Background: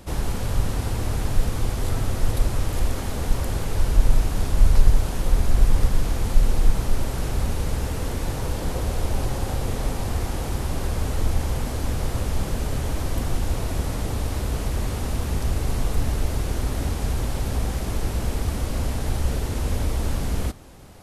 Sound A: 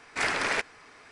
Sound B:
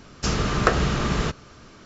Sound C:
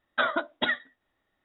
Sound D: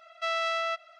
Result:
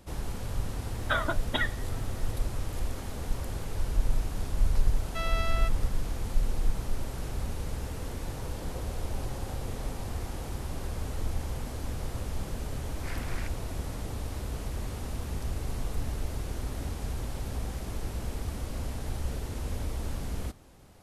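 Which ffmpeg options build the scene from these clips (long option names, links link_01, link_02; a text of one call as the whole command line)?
ffmpeg -i bed.wav -i cue0.wav -i cue1.wav -i cue2.wav -i cue3.wav -filter_complex "[0:a]volume=-9.5dB[link_01];[3:a]acompressor=mode=upward:threshold=-34dB:ratio=2.5:attack=3.2:release=140:knee=2.83:detection=peak,atrim=end=1.44,asetpts=PTS-STARTPTS,volume=-3dB,afade=type=in:duration=0.004:curve=hsin,afade=type=out:start_time=1.436:duration=0.004:curve=hsin,adelay=920[link_02];[4:a]atrim=end=0.99,asetpts=PTS-STARTPTS,volume=-5.5dB,afade=type=in:duration=0.004:curve=hsin,afade=type=out:start_time=0.986:duration=0.004:curve=hsin,adelay=217413S[link_03];[1:a]atrim=end=1.11,asetpts=PTS-STARTPTS,volume=-16.5dB,afade=type=in:duration=0.004:curve=hsin,afade=type=out:start_time=1.106:duration=0.004:curve=hsin,adelay=12870[link_04];[link_01][link_02][link_03][link_04]amix=inputs=4:normalize=0" out.wav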